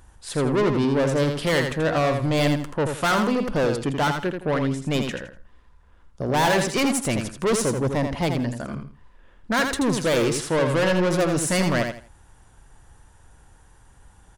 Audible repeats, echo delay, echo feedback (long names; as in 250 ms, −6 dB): 3, 82 ms, 25%